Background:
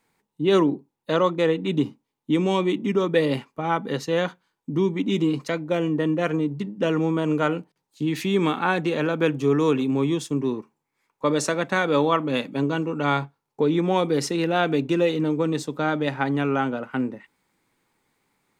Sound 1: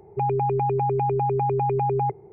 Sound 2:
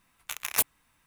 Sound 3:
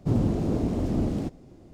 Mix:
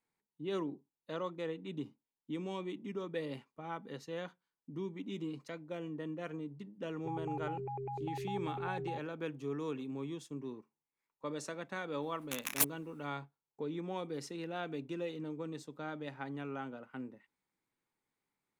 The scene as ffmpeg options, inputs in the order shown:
-filter_complex "[0:a]volume=-18.5dB[a];[1:a]atrim=end=2.32,asetpts=PTS-STARTPTS,volume=-18dB,afade=t=in:d=0.004:c=hsin,afade=t=out:st=2.316:d=0.004:c=hsin,adelay=6880[b];[2:a]atrim=end=1.06,asetpts=PTS-STARTPTS,volume=-5.5dB,afade=t=in:d=0.004:c=hsin,afade=t=out:st=1.056:d=0.004:c=hsin,adelay=12020[c];[a][b][c]amix=inputs=3:normalize=0"

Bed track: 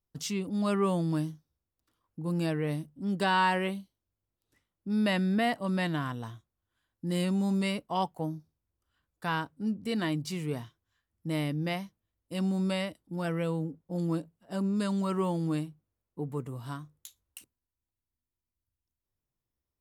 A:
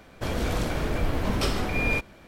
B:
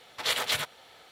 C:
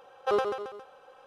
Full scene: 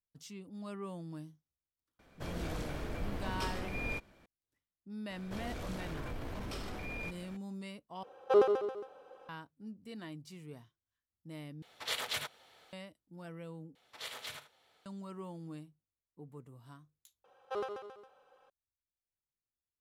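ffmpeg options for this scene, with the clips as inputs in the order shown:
-filter_complex "[1:a]asplit=2[a][b];[3:a]asplit=2[c][d];[2:a]asplit=2[e][f];[0:a]volume=-15.5dB[g];[b]acompressor=threshold=-40dB:ratio=2.5:attack=0.62:release=22:knee=1:detection=peak[h];[c]equalizer=f=340:t=o:w=1.8:g=10.5[i];[f]aecho=1:1:36|78:0.251|0.224[j];[g]asplit=5[k][l][m][n][o];[k]atrim=end=8.034[p];[i]atrim=end=1.26,asetpts=PTS-STARTPTS,volume=-7dB[q];[l]atrim=start=9.286:end=11.624[r];[e]atrim=end=1.11,asetpts=PTS-STARTPTS,volume=-8.5dB[s];[m]atrim=start=12.726:end=13.754[t];[j]atrim=end=1.11,asetpts=PTS-STARTPTS,volume=-16.5dB[u];[n]atrim=start=14.856:end=17.244[v];[d]atrim=end=1.26,asetpts=PTS-STARTPTS,volume=-11.5dB[w];[o]atrim=start=18.496[x];[a]atrim=end=2.27,asetpts=PTS-STARTPTS,volume=-12.5dB,afade=t=in:d=0.004:c=hsin,afade=t=out:st=2.266:d=0.004:c=hsin,adelay=1990[y];[h]atrim=end=2.27,asetpts=PTS-STARTPTS,volume=-4dB,afade=t=in:d=0.004:c=hsin,afade=t=out:st=2.266:d=0.004:c=hsin,adelay=5100[z];[p][q]acrossfade=d=0.004:c1=hsin:c2=hsin[aa];[aa][r]acrossfade=d=0.004:c1=hsin:c2=hsin[ab];[ab][s]acrossfade=d=0.004:c1=hsin:c2=hsin[ac];[ac][t]acrossfade=d=0.004:c1=hsin:c2=hsin[ad];[ad][u]acrossfade=d=0.004:c1=hsin:c2=hsin[ae];[ae][v]acrossfade=d=0.004:c1=hsin:c2=hsin[af];[af][w]acrossfade=d=0.004:c1=hsin:c2=hsin[ag];[ag][x]acrossfade=d=0.004:c1=hsin:c2=hsin[ah];[ah][y][z]amix=inputs=3:normalize=0"

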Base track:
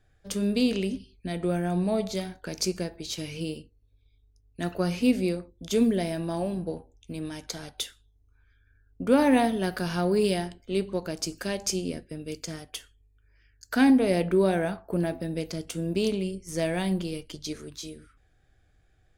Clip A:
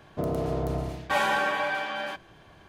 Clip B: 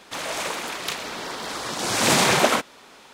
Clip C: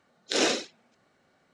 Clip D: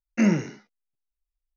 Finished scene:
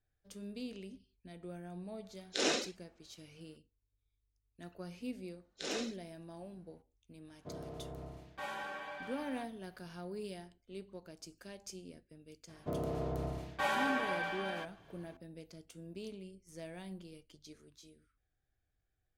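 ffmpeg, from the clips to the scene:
-filter_complex "[3:a]asplit=2[a][b];[1:a]asplit=2[c][d];[0:a]volume=-19.5dB[e];[a]atrim=end=1.53,asetpts=PTS-STARTPTS,volume=-7.5dB,afade=t=in:d=0.004:c=hsin,afade=t=out:st=1.526:d=0.004:c=hsin,adelay=2040[f];[b]atrim=end=1.53,asetpts=PTS-STARTPTS,volume=-15dB,afade=t=in:d=0.004:c=hsin,afade=t=out:st=1.526:d=0.004:c=hsin,adelay=233289S[g];[c]atrim=end=2.68,asetpts=PTS-STARTPTS,volume=-17.5dB,afade=t=in:d=0.004:c=hsin,afade=t=out:st=2.676:d=0.004:c=hsin,adelay=7280[h];[d]atrim=end=2.68,asetpts=PTS-STARTPTS,volume=-8.5dB,afade=t=in:d=0.004:c=hsin,afade=t=out:st=2.676:d=0.004:c=hsin,adelay=12490[i];[e][f][g][h][i]amix=inputs=5:normalize=0"

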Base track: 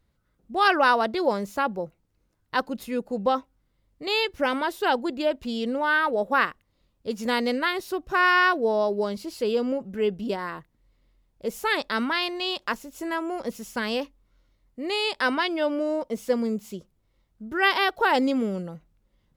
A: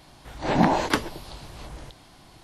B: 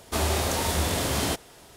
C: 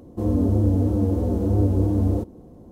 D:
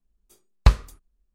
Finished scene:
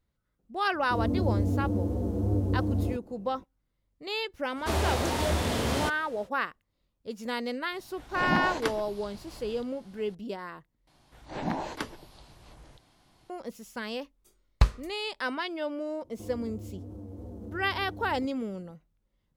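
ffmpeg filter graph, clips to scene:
-filter_complex "[3:a]asplit=2[a][b];[1:a]asplit=2[c][d];[0:a]volume=-8dB[e];[2:a]highshelf=f=5.8k:g=-11[f];[b]acompressor=threshold=-23dB:ratio=6:attack=3.2:release=140:knee=1:detection=peak[g];[e]asplit=2[h][i];[h]atrim=end=10.874[j];[d]atrim=end=2.43,asetpts=PTS-STARTPTS,volume=-12dB[k];[i]atrim=start=13.296[l];[a]atrim=end=2.71,asetpts=PTS-STARTPTS,volume=-7.5dB,afade=t=in:d=0.004:c=hsin,afade=t=out:st=2.706:d=0.004:c=hsin,adelay=730[m];[f]atrim=end=1.76,asetpts=PTS-STARTPTS,volume=-1.5dB,afade=t=in:d=0.05,afade=t=out:st=1.71:d=0.05,adelay=4540[n];[c]atrim=end=2.43,asetpts=PTS-STARTPTS,volume=-8dB,afade=t=in:d=0.004:c=hsin,afade=t=out:st=2.426:d=0.004:c=hsin,adelay=7720[o];[4:a]atrim=end=1.34,asetpts=PTS-STARTPTS,volume=-6dB,afade=t=in:d=0.004:c=hsin,afade=t=out:st=1.336:d=0.004:c=hsin,adelay=13950[p];[g]atrim=end=2.71,asetpts=PTS-STARTPTS,volume=-15dB,afade=t=in:d=0.004:c=hsin,afade=t=out:st=2.706:d=0.004:c=hsin,adelay=16020[q];[j][k]acrossfade=d=0.004:c1=hsin:c2=hsin[r];[r][l]acrossfade=d=0.004:c1=hsin:c2=hsin[s];[s][m][n][o][p][q]amix=inputs=6:normalize=0"

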